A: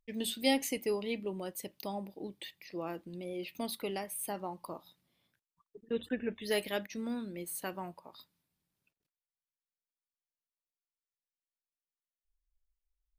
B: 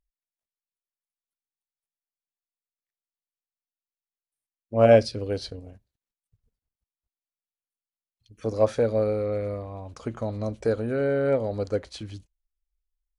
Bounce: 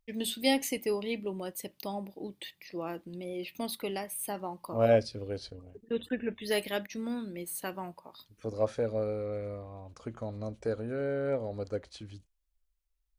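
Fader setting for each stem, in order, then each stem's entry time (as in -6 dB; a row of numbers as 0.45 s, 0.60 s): +2.0 dB, -8.0 dB; 0.00 s, 0.00 s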